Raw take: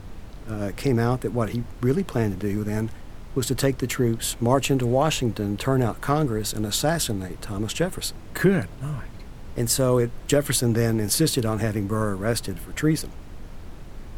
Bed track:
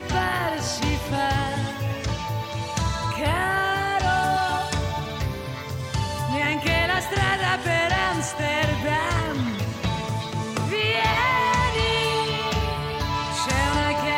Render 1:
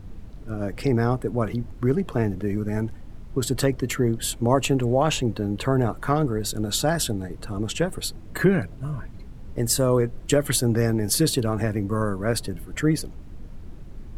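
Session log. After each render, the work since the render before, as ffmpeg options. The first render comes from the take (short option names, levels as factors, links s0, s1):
-af "afftdn=nr=9:nf=-40"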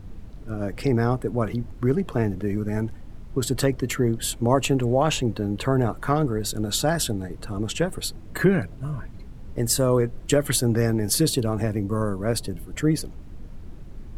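-filter_complex "[0:a]asettb=1/sr,asplit=3[s0][s1][s2];[s0]atrim=end=11.214[s3];[s1]atrim=start=11.21:end=12.96,asetpts=PTS-STARTPTS,afade=t=in:d=0.004:c=qsin,afade=t=out:st=1.746:d=0.004:c=qsin,equalizer=f=1600:w=1.5:g=-5[s4];[s2]atrim=start=12.956[s5];[s3][s4]acrossfade=d=0.004:c1=hsin:c2=qsin[s6];[s6][s5]acrossfade=d=0.004:c1=qsin:c2=hsin"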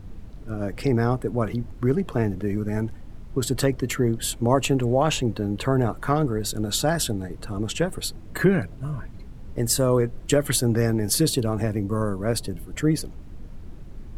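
-af anull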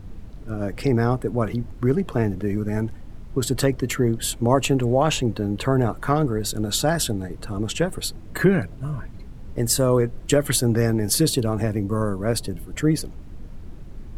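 -af "volume=1.19"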